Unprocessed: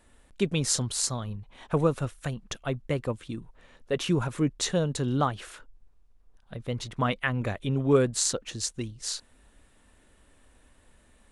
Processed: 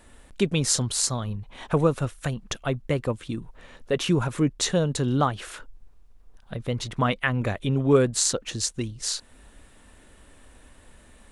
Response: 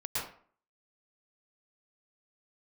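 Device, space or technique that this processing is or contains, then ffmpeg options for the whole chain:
parallel compression: -filter_complex "[0:a]asplit=2[s0][s1];[s1]acompressor=threshold=0.01:ratio=6,volume=0.944[s2];[s0][s2]amix=inputs=2:normalize=0,volume=1.26"

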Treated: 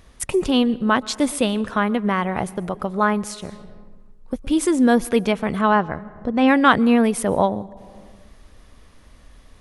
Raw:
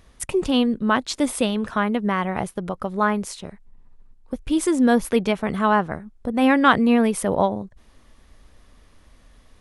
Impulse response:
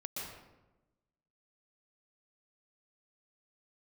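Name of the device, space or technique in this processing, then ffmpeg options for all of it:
compressed reverb return: -filter_complex "[0:a]asplit=2[s0][s1];[1:a]atrim=start_sample=2205[s2];[s1][s2]afir=irnorm=-1:irlink=0,acompressor=threshold=0.0251:ratio=6,volume=0.501[s3];[s0][s3]amix=inputs=2:normalize=0,asettb=1/sr,asplit=3[s4][s5][s6];[s4]atrim=end=5.614[s7];[s5]atrim=start=5.61:end=6.48,asetpts=PTS-STARTPTS,afade=t=in:d=0.004:c=qsin,afade=t=out:st=0.866:d=0.004:c=qsin,lowpass=f=6400:w=0.5412,lowpass=f=6400:w=1.3066[s8];[s6]atrim=start=6.476[s9];[s7][s8]acrossfade=d=0.004:c1=hsin:c2=qsin[s10];[s10][s9]acrossfade=d=0.004:c1=qsin:c2=hsin,volume=1.12"

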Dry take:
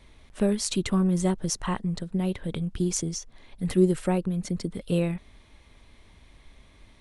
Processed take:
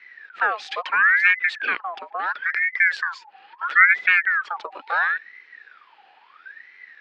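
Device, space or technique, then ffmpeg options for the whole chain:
voice changer toy: -af "aeval=exprs='val(0)*sin(2*PI*1400*n/s+1400*0.45/0.74*sin(2*PI*0.74*n/s))':c=same,highpass=420,equalizer=f=620:t=q:w=4:g=-7,equalizer=f=1000:t=q:w=4:g=-5,equalizer=f=1700:t=q:w=4:g=8,equalizer=f=2400:t=q:w=4:g=6,lowpass=f=3900:w=0.5412,lowpass=f=3900:w=1.3066,volume=1.58"

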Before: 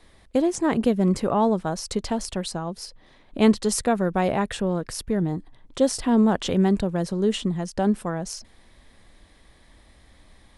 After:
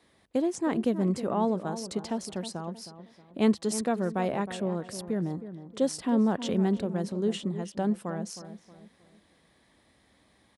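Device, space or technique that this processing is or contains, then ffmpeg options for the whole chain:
filter by subtraction: -filter_complex "[0:a]highpass=62,asplit=2[s0][s1];[s1]lowpass=210,volume=-1[s2];[s0][s2]amix=inputs=2:normalize=0,asplit=2[s3][s4];[s4]adelay=315,lowpass=f=1500:p=1,volume=0.266,asplit=2[s5][s6];[s6]adelay=315,lowpass=f=1500:p=1,volume=0.4,asplit=2[s7][s8];[s8]adelay=315,lowpass=f=1500:p=1,volume=0.4,asplit=2[s9][s10];[s10]adelay=315,lowpass=f=1500:p=1,volume=0.4[s11];[s3][s5][s7][s9][s11]amix=inputs=5:normalize=0,volume=0.422"

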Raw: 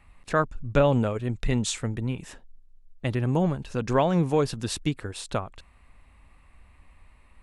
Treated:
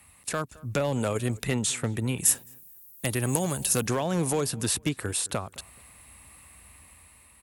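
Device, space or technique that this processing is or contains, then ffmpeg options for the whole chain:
FM broadcast chain: -filter_complex "[0:a]highpass=f=64:w=0.5412,highpass=f=64:w=1.3066,dynaudnorm=f=400:g=5:m=1.68,acrossover=split=370|2500[s0][s1][s2];[s0]acompressor=threshold=0.0562:ratio=4[s3];[s1]acompressor=threshold=0.0794:ratio=4[s4];[s2]acompressor=threshold=0.00501:ratio=4[s5];[s3][s4][s5]amix=inputs=3:normalize=0,aemphasis=mode=production:type=50fm,alimiter=limit=0.168:level=0:latency=1:release=318,asoftclip=type=hard:threshold=0.119,lowpass=f=15000:w=0.5412,lowpass=f=15000:w=1.3066,aemphasis=mode=production:type=50fm,asettb=1/sr,asplit=3[s6][s7][s8];[s6]atrim=end=2.254[s9];[s7]atrim=start=2.25:end=3.86,asetpts=PTS-STARTPTS,afade=t=in:d=0.004:c=qsin,afade=t=out:st=1.606:d=0.004:c=qsin,aemphasis=mode=production:type=50fm[s10];[s8]atrim=start=3.856[s11];[s9][s10]acrossfade=d=0.004:c1=hsin:c2=qsin[s12];[s12][s11]acrossfade=d=0.004:c1=qsin:c2=hsin,asplit=2[s13][s14];[s14]adelay=215,lowpass=f=2100:p=1,volume=0.0794,asplit=2[s15][s16];[s16]adelay=215,lowpass=f=2100:p=1,volume=0.32[s17];[s13][s15][s17]amix=inputs=3:normalize=0"

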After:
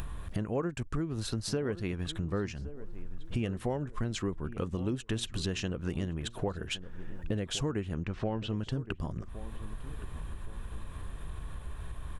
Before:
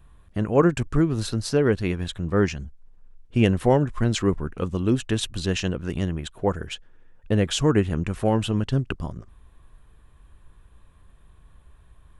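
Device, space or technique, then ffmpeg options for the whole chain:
upward and downward compression: -filter_complex "[0:a]acompressor=mode=upward:threshold=0.0501:ratio=2.5,acompressor=threshold=0.0316:ratio=6,asettb=1/sr,asplit=3[s0][s1][s2];[s0]atrim=end=8.034[s3];[s1]atrim=start=8.03:end=8.5,asetpts=PTS-STARTPTS,afade=t=in:d=0.004:c=qsin,afade=t=out:st=0.466:d=0.004:c=qsin,lowpass=f=5400:w=0.5412,lowpass=f=5400:w=1.3066[s4];[s2]atrim=start=8.496[s5];[s3][s4]acrossfade=d=0.004:c1=hsin:c2=qsin[s6];[s6][s5]acrossfade=d=0.004:c1=qsin:c2=hsin,asplit=2[s7][s8];[s8]adelay=1118,lowpass=f=1100:p=1,volume=0.2,asplit=2[s9][s10];[s10]adelay=1118,lowpass=f=1100:p=1,volume=0.35,asplit=2[s11][s12];[s12]adelay=1118,lowpass=f=1100:p=1,volume=0.35[s13];[s7][s9][s11][s13]amix=inputs=4:normalize=0"

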